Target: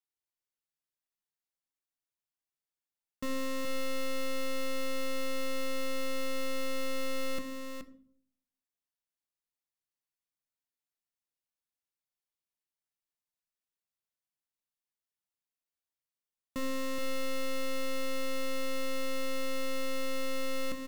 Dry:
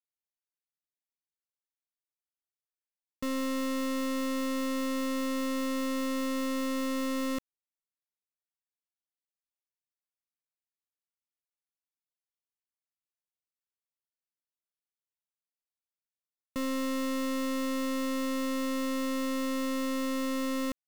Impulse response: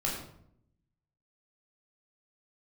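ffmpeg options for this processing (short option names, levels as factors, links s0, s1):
-filter_complex "[0:a]aecho=1:1:425:0.473,asplit=2[s0][s1];[1:a]atrim=start_sample=2205,asetrate=61740,aresample=44100[s2];[s1][s2]afir=irnorm=-1:irlink=0,volume=0.251[s3];[s0][s3]amix=inputs=2:normalize=0,volume=0.668"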